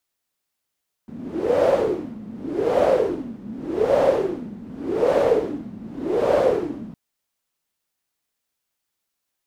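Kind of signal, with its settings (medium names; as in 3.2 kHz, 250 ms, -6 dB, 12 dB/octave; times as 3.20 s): wind-like swept noise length 5.86 s, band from 210 Hz, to 560 Hz, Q 6.5, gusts 5, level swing 19 dB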